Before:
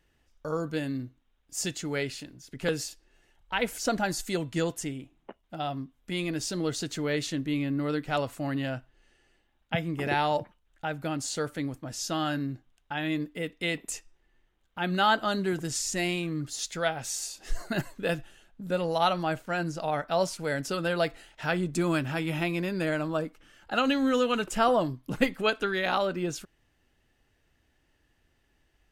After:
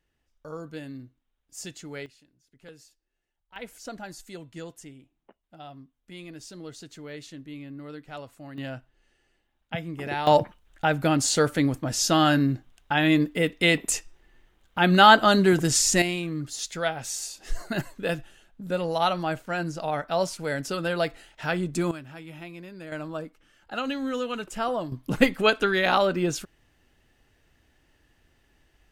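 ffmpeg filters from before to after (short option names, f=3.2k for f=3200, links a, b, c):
-af "asetnsamples=n=441:p=0,asendcmd='2.06 volume volume -19dB;3.56 volume volume -11dB;8.58 volume volume -3dB;10.27 volume volume 9.5dB;16.02 volume volume 1dB;21.91 volume volume -12dB;22.92 volume volume -4.5dB;24.92 volume volume 5.5dB',volume=-7dB"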